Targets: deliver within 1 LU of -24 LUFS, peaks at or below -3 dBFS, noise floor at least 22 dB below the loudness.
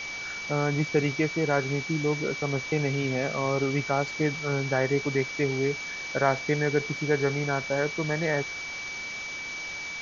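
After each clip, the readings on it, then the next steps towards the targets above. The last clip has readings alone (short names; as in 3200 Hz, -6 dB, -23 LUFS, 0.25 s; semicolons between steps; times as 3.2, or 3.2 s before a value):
steady tone 2300 Hz; tone level -34 dBFS; noise floor -36 dBFS; noise floor target -50 dBFS; loudness -27.5 LUFS; peak -8.5 dBFS; loudness target -24.0 LUFS
-> notch 2300 Hz, Q 30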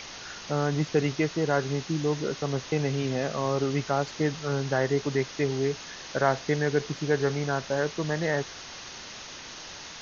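steady tone none; noise floor -42 dBFS; noise floor target -50 dBFS
-> noise print and reduce 8 dB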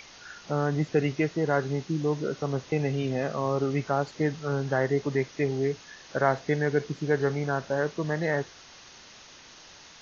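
noise floor -50 dBFS; loudness -28.0 LUFS; peak -9.0 dBFS; loudness target -24.0 LUFS
-> gain +4 dB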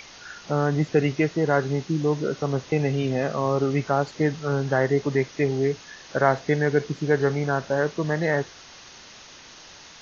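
loudness -24.0 LUFS; peak -5.0 dBFS; noise floor -46 dBFS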